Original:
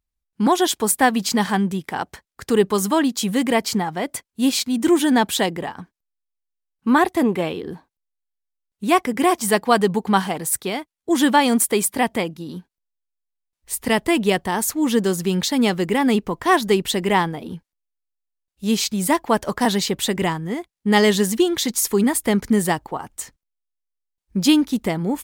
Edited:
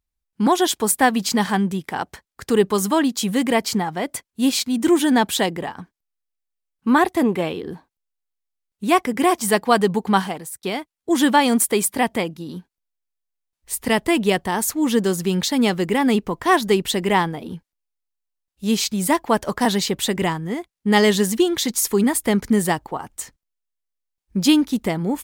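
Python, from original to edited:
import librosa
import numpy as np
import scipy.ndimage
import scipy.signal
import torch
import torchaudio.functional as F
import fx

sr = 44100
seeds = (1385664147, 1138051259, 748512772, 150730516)

y = fx.edit(x, sr, fx.fade_out_span(start_s=10.19, length_s=0.44), tone=tone)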